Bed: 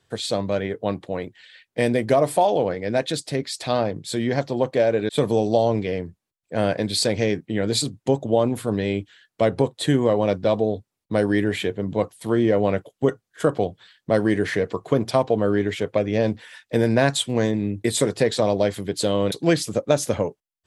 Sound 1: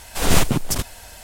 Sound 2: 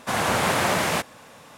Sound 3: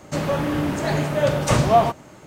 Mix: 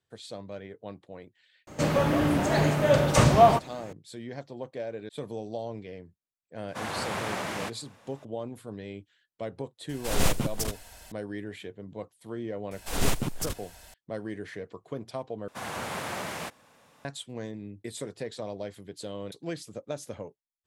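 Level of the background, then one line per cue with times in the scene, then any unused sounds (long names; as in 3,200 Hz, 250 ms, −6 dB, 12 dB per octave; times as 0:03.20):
bed −16.5 dB
0:01.67: mix in 3 −1.5 dB
0:06.68: mix in 2 −10.5 dB + high-shelf EQ 11,000 Hz −8.5 dB
0:09.89: mix in 1 −8.5 dB
0:12.71: mix in 1 −10 dB
0:15.48: overwrite with 2 −12.5 dB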